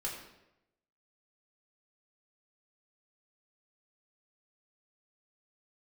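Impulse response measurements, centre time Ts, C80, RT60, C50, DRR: 41 ms, 6.5 dB, 0.90 s, 4.5 dB, -3.5 dB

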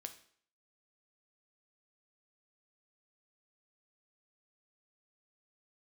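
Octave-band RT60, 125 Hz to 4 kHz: 0.50, 0.55, 0.55, 0.55, 0.55, 0.50 s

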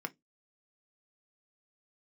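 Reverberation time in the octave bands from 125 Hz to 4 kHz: 0.25, 0.25, 0.20, 0.10, 0.15, 0.15 s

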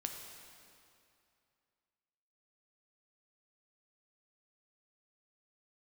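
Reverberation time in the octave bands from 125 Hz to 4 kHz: 2.7, 2.5, 2.5, 2.6, 2.4, 2.2 s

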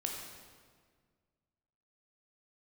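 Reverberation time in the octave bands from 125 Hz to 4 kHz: 2.3, 2.1, 1.8, 1.6, 1.5, 1.3 s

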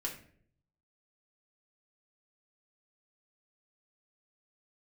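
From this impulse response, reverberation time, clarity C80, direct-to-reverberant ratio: 0.55 s, 12.5 dB, -2.5 dB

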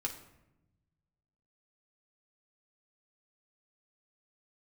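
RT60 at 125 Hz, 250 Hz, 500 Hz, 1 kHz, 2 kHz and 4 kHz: 2.0, 1.5, 1.0, 0.80, 0.75, 0.55 s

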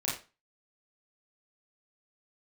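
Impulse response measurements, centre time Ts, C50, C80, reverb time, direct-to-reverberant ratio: 38 ms, 5.5 dB, 11.5 dB, 0.30 s, -7.0 dB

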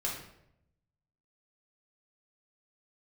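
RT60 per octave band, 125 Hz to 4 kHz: 1.3, 0.95, 0.85, 0.70, 0.65, 0.55 s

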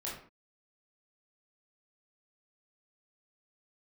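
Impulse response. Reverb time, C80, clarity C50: not exponential, 8.5 dB, 4.0 dB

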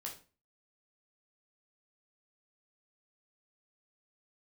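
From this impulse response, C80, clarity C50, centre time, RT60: 14.5 dB, 9.0 dB, 21 ms, 0.35 s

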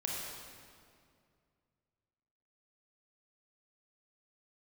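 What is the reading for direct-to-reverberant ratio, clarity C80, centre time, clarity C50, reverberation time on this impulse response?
-3.0 dB, 0.5 dB, 0.118 s, -1.5 dB, 2.3 s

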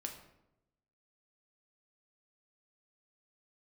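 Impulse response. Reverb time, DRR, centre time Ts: 0.90 s, 2.5 dB, 21 ms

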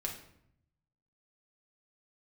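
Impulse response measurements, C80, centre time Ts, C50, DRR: 10.5 dB, 24 ms, 7.0 dB, -0.5 dB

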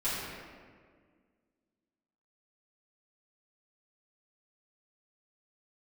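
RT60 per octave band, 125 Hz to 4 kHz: 2.0, 2.3, 1.9, 1.6, 1.5, 1.1 s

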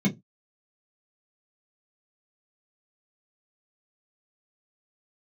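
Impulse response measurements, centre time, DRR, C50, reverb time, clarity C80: 15 ms, -5.0 dB, 18.5 dB, not exponential, 26.0 dB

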